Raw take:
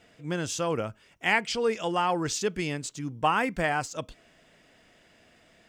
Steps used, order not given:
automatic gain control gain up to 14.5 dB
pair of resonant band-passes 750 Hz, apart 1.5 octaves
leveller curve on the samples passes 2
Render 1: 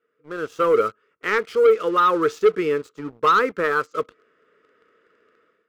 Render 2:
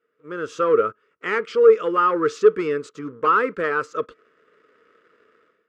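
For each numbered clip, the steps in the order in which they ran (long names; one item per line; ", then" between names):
automatic gain control, then pair of resonant band-passes, then leveller curve on the samples
automatic gain control, then leveller curve on the samples, then pair of resonant band-passes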